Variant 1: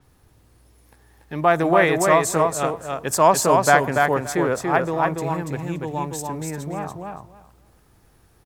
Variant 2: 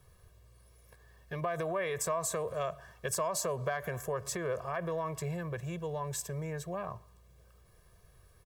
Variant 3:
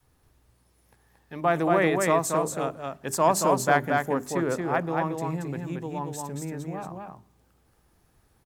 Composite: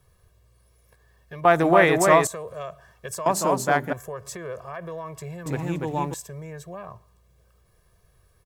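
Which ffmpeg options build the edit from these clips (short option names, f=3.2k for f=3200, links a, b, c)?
-filter_complex "[0:a]asplit=2[a][b];[1:a]asplit=4[c][d][e][f];[c]atrim=end=1.452[g];[a]atrim=start=1.448:end=2.272[h];[d]atrim=start=2.268:end=3.262[i];[2:a]atrim=start=3.258:end=3.932[j];[e]atrim=start=3.928:end=5.462[k];[b]atrim=start=5.458:end=6.142[l];[f]atrim=start=6.138[m];[g][h]acrossfade=d=0.004:c1=hsin:c2=hsin[n];[n][i]acrossfade=d=0.004:c1=hsin:c2=hsin[o];[o][j]acrossfade=d=0.004:c1=hsin:c2=hsin[p];[p][k]acrossfade=d=0.004:c1=hsin:c2=hsin[q];[q][l]acrossfade=d=0.004:c1=hsin:c2=hsin[r];[r][m]acrossfade=d=0.004:c1=hsin:c2=hsin"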